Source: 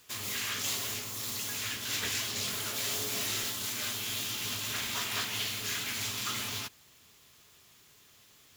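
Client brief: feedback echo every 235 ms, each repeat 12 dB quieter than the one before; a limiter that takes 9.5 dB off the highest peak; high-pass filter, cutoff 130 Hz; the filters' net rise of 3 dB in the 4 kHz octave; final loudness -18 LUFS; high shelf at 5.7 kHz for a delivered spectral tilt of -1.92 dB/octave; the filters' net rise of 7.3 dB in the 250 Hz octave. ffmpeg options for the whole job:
-af "highpass=130,equalizer=f=250:t=o:g=9,equalizer=f=4000:t=o:g=6,highshelf=f=5700:g=-6,alimiter=level_in=1.68:limit=0.0631:level=0:latency=1,volume=0.596,aecho=1:1:235|470|705:0.251|0.0628|0.0157,volume=7.5"

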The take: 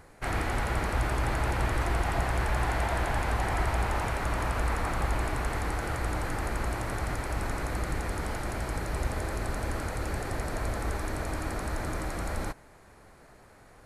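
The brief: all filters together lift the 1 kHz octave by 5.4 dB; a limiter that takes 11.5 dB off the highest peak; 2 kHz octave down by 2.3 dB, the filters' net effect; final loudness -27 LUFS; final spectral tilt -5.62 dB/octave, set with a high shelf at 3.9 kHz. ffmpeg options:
-af "equalizer=f=1000:t=o:g=8.5,equalizer=f=2000:t=o:g=-5,highshelf=f=3900:g=-7.5,volume=2.51,alimiter=limit=0.133:level=0:latency=1"

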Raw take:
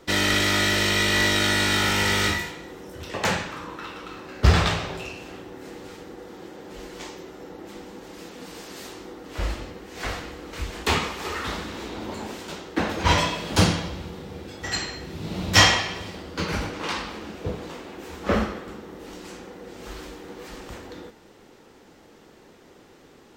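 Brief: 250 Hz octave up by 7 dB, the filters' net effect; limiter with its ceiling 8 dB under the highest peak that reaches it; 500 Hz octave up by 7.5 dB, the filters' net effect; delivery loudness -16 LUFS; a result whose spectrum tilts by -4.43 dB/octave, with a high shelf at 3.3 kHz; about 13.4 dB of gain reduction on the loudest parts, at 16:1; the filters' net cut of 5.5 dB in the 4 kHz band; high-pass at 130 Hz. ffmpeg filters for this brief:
-af "highpass=130,equalizer=f=250:t=o:g=8,equalizer=f=500:t=o:g=7,highshelf=f=3300:g=-5.5,equalizer=f=4000:t=o:g=-3.5,acompressor=threshold=0.0631:ratio=16,volume=6.68,alimiter=limit=0.562:level=0:latency=1"

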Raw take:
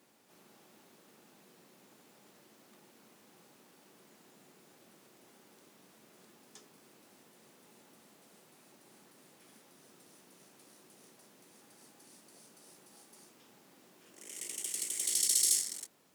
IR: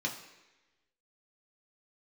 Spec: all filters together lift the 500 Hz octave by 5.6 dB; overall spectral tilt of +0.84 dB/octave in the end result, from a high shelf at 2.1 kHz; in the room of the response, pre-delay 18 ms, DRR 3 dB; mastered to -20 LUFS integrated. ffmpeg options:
-filter_complex "[0:a]equalizer=f=500:t=o:g=7,highshelf=f=2100:g=4.5,asplit=2[s0][s1];[1:a]atrim=start_sample=2205,adelay=18[s2];[s1][s2]afir=irnorm=-1:irlink=0,volume=0.447[s3];[s0][s3]amix=inputs=2:normalize=0,volume=1.88"

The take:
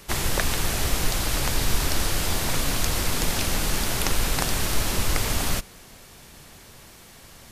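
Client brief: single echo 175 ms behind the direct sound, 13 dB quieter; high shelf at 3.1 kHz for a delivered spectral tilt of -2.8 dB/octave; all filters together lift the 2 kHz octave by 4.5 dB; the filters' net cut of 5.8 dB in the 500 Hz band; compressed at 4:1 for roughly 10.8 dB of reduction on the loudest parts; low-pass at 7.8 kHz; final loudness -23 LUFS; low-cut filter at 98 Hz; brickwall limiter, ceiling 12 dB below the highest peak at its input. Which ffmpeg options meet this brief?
-af "highpass=98,lowpass=7800,equalizer=f=500:t=o:g=-8,equalizer=f=2000:t=o:g=8,highshelf=f=3100:g=-5.5,acompressor=threshold=0.0251:ratio=4,alimiter=level_in=1.26:limit=0.0631:level=0:latency=1,volume=0.794,aecho=1:1:175:0.224,volume=3.76"

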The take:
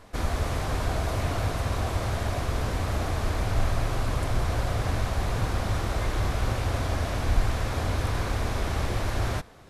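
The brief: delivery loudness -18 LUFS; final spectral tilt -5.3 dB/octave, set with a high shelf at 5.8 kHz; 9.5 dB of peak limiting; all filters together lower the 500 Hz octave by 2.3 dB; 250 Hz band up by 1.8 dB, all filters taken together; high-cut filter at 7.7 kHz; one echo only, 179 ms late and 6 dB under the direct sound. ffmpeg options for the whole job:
-af "lowpass=7700,equalizer=f=250:t=o:g=3.5,equalizer=f=500:t=o:g=-4,highshelf=f=5800:g=5.5,alimiter=limit=0.106:level=0:latency=1,aecho=1:1:179:0.501,volume=3.76"

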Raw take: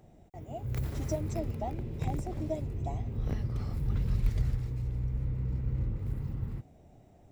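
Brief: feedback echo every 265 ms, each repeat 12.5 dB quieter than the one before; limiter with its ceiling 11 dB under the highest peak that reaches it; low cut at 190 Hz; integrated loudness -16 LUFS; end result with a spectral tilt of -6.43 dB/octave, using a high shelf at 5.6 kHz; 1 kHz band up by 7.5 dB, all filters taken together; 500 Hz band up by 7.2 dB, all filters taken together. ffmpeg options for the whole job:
-af "highpass=190,equalizer=f=500:t=o:g=7,equalizer=f=1000:t=o:g=7.5,highshelf=f=5600:g=-3.5,alimiter=level_in=1.5:limit=0.0631:level=0:latency=1,volume=0.668,aecho=1:1:265|530|795:0.237|0.0569|0.0137,volume=15.8"

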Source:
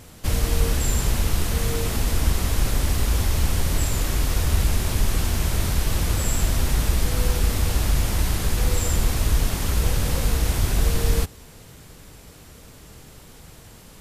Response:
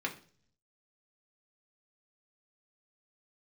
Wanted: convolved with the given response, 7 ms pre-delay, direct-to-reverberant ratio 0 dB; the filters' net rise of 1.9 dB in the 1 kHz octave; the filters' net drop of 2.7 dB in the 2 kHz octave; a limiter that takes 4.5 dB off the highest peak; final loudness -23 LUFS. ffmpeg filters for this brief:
-filter_complex "[0:a]equalizer=f=1000:t=o:g=3.5,equalizer=f=2000:t=o:g=-4.5,alimiter=limit=0.251:level=0:latency=1,asplit=2[s0][s1];[1:a]atrim=start_sample=2205,adelay=7[s2];[s1][s2]afir=irnorm=-1:irlink=0,volume=0.596[s3];[s0][s3]amix=inputs=2:normalize=0,volume=1.06"

